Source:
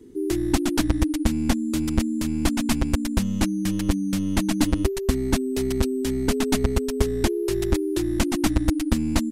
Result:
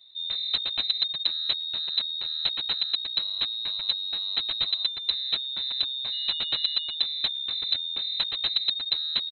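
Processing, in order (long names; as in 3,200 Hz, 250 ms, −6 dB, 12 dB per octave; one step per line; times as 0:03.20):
0:06.12–0:06.93: steady tone 1,100 Hz −31 dBFS
far-end echo of a speakerphone 110 ms, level −28 dB
voice inversion scrambler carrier 4,000 Hz
level −7 dB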